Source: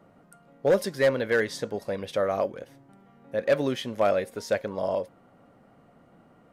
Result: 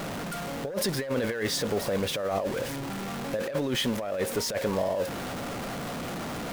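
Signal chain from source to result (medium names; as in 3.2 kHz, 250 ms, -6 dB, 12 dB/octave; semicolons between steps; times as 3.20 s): jump at every zero crossing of -32.5 dBFS; compressor with a negative ratio -28 dBFS, ratio -1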